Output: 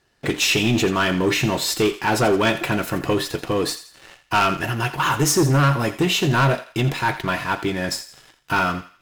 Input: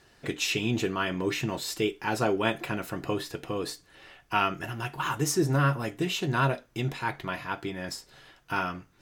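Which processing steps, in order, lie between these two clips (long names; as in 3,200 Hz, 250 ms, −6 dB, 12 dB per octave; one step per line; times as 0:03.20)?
leveller curve on the samples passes 3
feedback echo with a high-pass in the loop 84 ms, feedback 41%, high-pass 910 Hz, level −12 dB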